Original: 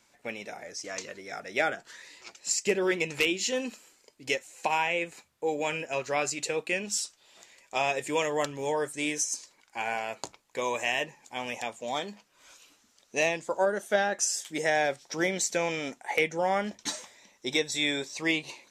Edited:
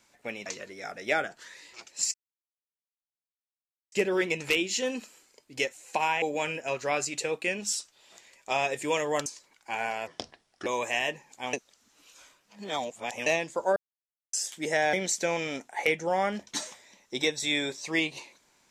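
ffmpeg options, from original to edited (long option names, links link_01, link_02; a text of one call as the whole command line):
ffmpeg -i in.wav -filter_complex "[0:a]asplit=12[link_01][link_02][link_03][link_04][link_05][link_06][link_07][link_08][link_09][link_10][link_11][link_12];[link_01]atrim=end=0.462[link_13];[link_02]atrim=start=0.938:end=2.62,asetpts=PTS-STARTPTS,afade=type=out:start_time=1.678:duration=0.004:curve=hsin,apad=pad_dur=1.78[link_14];[link_03]atrim=start=2.62:end=4.922,asetpts=PTS-STARTPTS,afade=type=in:duration=0.004:curve=hsin[link_15];[link_04]atrim=start=5.468:end=8.512[link_16];[link_05]atrim=start=9.328:end=10.144[link_17];[link_06]atrim=start=10.14:end=10.59,asetpts=PTS-STARTPTS,asetrate=33516,aresample=44100[link_18];[link_07]atrim=start=10.586:end=11.462[link_19];[link_08]atrim=start=11.458:end=13.192,asetpts=PTS-STARTPTS,areverse[link_20];[link_09]atrim=start=13.188:end=13.69,asetpts=PTS-STARTPTS,afade=type=out:start_time=0.498:duration=0.004:curve=hsin[link_21];[link_10]atrim=start=13.69:end=14.26,asetpts=PTS-STARTPTS,volume=0[link_22];[link_11]atrim=start=14.26:end=14.862,asetpts=PTS-STARTPTS,afade=type=in:duration=0.004:curve=hsin[link_23];[link_12]atrim=start=15.248[link_24];[link_14][link_15]concat=n=2:v=0:a=1[link_25];[link_13][link_25]acrossfade=duration=0.004:curve1=hsin:curve2=hsin[link_26];[link_26][link_16]acrossfade=duration=0.004:curve1=hsin:curve2=hsin[link_27];[link_27][link_17]acrossfade=duration=0.004:curve1=hsin:curve2=hsin[link_28];[link_28][link_18]acrossfade=duration=0.004:curve1=hsin:curve2=hsin[link_29];[link_29][link_19]acrossfade=duration=0.004:curve1=hsin:curve2=hsin[link_30];[link_30][link_20]acrossfade=duration=0.004:curve1=hsin:curve2=hsin[link_31];[link_21][link_22][link_23]concat=n=3:v=0:a=1[link_32];[link_31][link_32]acrossfade=duration=0.004:curve1=hsin:curve2=hsin[link_33];[link_33][link_24]acrossfade=duration=0.004:curve1=hsin:curve2=hsin" out.wav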